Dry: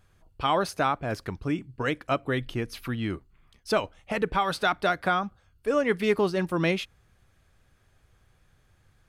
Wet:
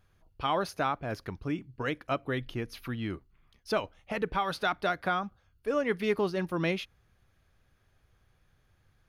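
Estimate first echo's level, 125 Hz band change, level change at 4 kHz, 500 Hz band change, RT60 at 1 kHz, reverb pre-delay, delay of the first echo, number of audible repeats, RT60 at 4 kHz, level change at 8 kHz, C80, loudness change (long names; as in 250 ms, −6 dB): no echo audible, −4.5 dB, −4.5 dB, −4.5 dB, no reverb audible, no reverb audible, no echo audible, no echo audible, no reverb audible, −7.0 dB, no reverb audible, −4.5 dB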